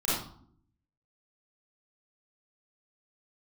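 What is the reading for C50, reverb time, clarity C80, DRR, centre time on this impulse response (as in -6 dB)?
-2.0 dB, 0.60 s, 4.0 dB, -10.0 dB, 64 ms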